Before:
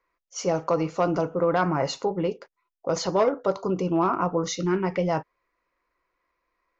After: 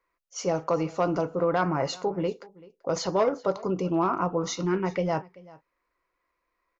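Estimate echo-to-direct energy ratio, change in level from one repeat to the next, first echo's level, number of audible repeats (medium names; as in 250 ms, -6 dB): -22.0 dB, no regular repeats, -22.0 dB, 1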